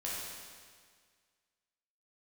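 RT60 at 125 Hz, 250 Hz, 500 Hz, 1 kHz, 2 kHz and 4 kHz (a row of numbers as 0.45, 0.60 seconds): 1.8, 1.8, 1.8, 1.8, 1.8, 1.7 seconds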